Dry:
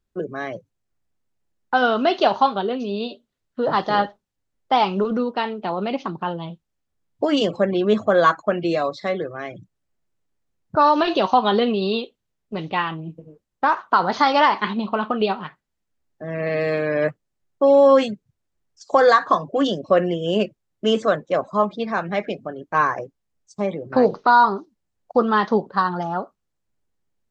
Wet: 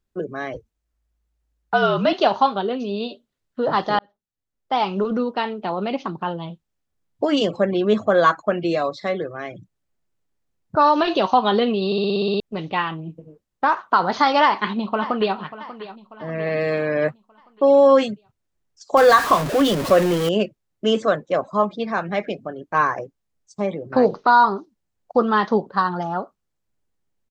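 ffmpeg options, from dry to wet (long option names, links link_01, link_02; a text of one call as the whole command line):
ffmpeg -i in.wav -filter_complex "[0:a]asettb=1/sr,asplit=3[link_01][link_02][link_03];[link_01]atrim=end=0.544[link_04];[link_02]atrim=start=0.54:end=2.13,asetpts=PTS-STARTPTS,afade=type=in:duration=0.004:curve=qsin,afade=type=out:start_time=1.586:duration=0.004:curve=qsin,afreqshift=-55[link_05];[link_03]atrim=start=2.126[link_06];[link_04][link_05]acrossfade=duration=0.004:curve1=hsin:curve2=qsin[link_07];[link_07][link_06]acrossfade=duration=0.004:curve1=qsin:curve2=hsin,asplit=2[link_08][link_09];[link_09]afade=type=in:start_time=14.42:duration=0.01,afade=type=out:start_time=15.36:duration=0.01,aecho=0:1:590|1180|1770|2360|2950:0.177828|0.088914|0.044457|0.0222285|0.0111142[link_10];[link_08][link_10]amix=inputs=2:normalize=0,asettb=1/sr,asplit=3[link_11][link_12][link_13];[link_11]atrim=end=18.974[link_14];[link_12]atrim=start=18.97:end=20.29,asetpts=PTS-STARTPTS,afade=type=in:duration=0.004:curve=qsin,afade=type=out:start_time=1.316:duration=0.004:curve=qsin,aeval=exprs='val(0)+0.5*0.0891*sgn(val(0))':channel_layout=same[link_15];[link_13]atrim=start=20.286[link_16];[link_14][link_15]acrossfade=duration=0.004:curve1=hsin:curve2=qsin[link_17];[link_17][link_16]acrossfade=duration=0.004:curve1=qsin:curve2=hsin,asplit=11[link_18][link_19][link_20][link_21][link_22][link_23][link_24][link_25][link_26][link_27][link_28];[link_18]atrim=end=3.99,asetpts=PTS-STARTPTS,afade=type=out:start_time=3.986:duration=0.004:curve=hsin[link_29];[link_19]atrim=start=3.99:end=11.922,asetpts=PTS-STARTPTS,afade=type=in:duration=1.13[link_30];[link_20]atrim=start=11.858:end=11.922[link_31];[link_21]atrim=start=11.858:end=11.922[link_32];[link_22]atrim=start=11.858:end=11.922[link_33];[link_23]atrim=start=11.858:end=11.922[link_34];[link_24]atrim=start=11.858:end=11.922[link_35];[link_25]atrim=start=11.858:end=11.922[link_36];[link_26]atrim=start=11.858:end=11.922[link_37];[link_27]atrim=start=11.858:end=11.922[link_38];[link_28]atrim=start=12.398[link_39];[link_29][link_30]concat=n=2:v=0:a=1[link_40];[link_40][link_31]acrossfade=duration=0.004:curve1=hsin:curve2=hsin[link_41];[link_41][link_32]acrossfade=duration=0.004:curve1=hsin:curve2=hsin[link_42];[link_42][link_33]acrossfade=duration=0.004:curve1=hsin:curve2=hsin[link_43];[link_43][link_34]acrossfade=duration=0.004:curve1=hsin:curve2=hsin[link_44];[link_44][link_35]acrossfade=duration=0.004:curve1=hsin:curve2=hsin[link_45];[link_45][link_36]acrossfade=duration=0.004:curve1=hsin:curve2=hsin[link_46];[link_46][link_37]acrossfade=duration=0.004:curve1=hsin:curve2=hsin[link_47];[link_47][link_38]acrossfade=duration=0.004:curve1=hsin:curve2=hsin[link_48];[link_48][link_39]acrossfade=duration=0.004:curve1=hsin:curve2=hsin" out.wav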